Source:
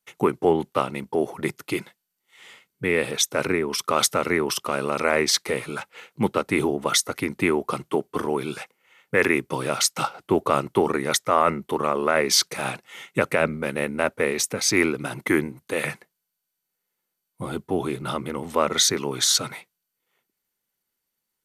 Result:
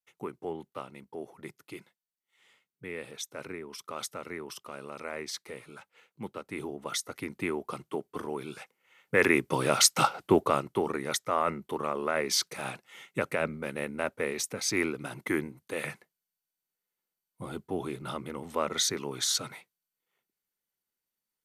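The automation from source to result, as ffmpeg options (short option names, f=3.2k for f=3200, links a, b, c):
-af "volume=1.5dB,afade=t=in:st=6.42:d=0.85:silence=0.473151,afade=t=in:st=8.55:d=1.56:silence=0.251189,afade=t=out:st=10.11:d=0.53:silence=0.316228"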